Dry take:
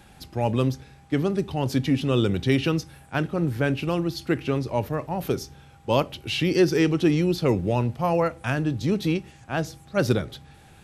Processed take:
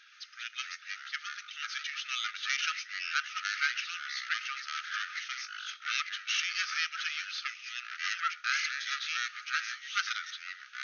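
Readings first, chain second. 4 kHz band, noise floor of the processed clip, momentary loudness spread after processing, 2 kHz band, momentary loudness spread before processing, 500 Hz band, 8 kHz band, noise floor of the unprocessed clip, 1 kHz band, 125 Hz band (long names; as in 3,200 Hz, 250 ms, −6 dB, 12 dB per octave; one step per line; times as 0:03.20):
+0.5 dB, −53 dBFS, 9 LU, +2.0 dB, 9 LU, below −40 dB, +1.5 dB, −51 dBFS, −7.5 dB, below −40 dB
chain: stylus tracing distortion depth 0.25 ms
delay with pitch and tempo change per echo 118 ms, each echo −5 semitones, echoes 3
linear-phase brick-wall band-pass 1,200–6,600 Hz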